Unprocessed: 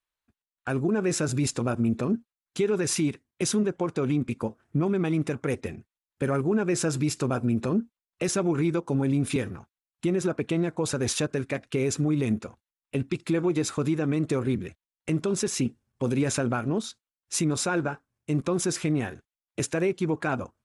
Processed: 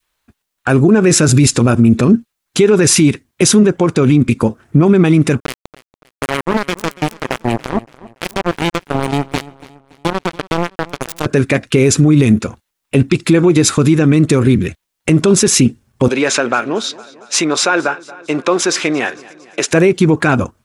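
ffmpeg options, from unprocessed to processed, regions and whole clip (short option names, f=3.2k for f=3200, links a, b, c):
-filter_complex "[0:a]asettb=1/sr,asplit=3[a][b][c];[a]atrim=end=5.404[d];[b]atrim=start=5.4:end=11.26,asetpts=PTS-STARTPTS,afade=t=in:d=0.004:c=qsin,afade=t=out:st=5.856:d=0.004:c=qsin,acrusher=bits=2:mix=0:aa=0.5,asoftclip=type=hard:threshold=-23.5dB,aecho=1:1:284|568|852:0.1|0.04|0.016,atrim=end_sample=258426[e];[c]atrim=start=11.256[f];[d][e]acrossfade=d=0.004:c1=hsin:c2=qsin[g];[g][f]acrossfade=d=0.004:c1=qsin:c2=hsin,asettb=1/sr,asplit=3[h][i][j];[h]atrim=end=16.084[k];[i]atrim=start=16.08:end=19.71,asetpts=PTS-STARTPTS,afade=t=in:d=0.004:c=qsin,afade=t=out:st=3.626:d=0.004:c=qsin,highpass=510,lowpass=5.2k,aecho=1:1:228|456|684|912:0.075|0.0435|0.0252|0.0146,atrim=end_sample=160083[l];[j]atrim=start=19.706[m];[k][l]acrossfade=d=0.004:c1=hsin:c2=qsin[n];[n][m]acrossfade=d=0.004:c1=qsin:c2=hsin,adynamicequalizer=threshold=0.00794:dfrequency=730:dqfactor=0.78:tfrequency=730:tqfactor=0.78:attack=5:release=100:ratio=0.375:range=3.5:mode=cutabove:tftype=bell,alimiter=level_in=20.5dB:limit=-1dB:release=50:level=0:latency=1,volume=-1dB"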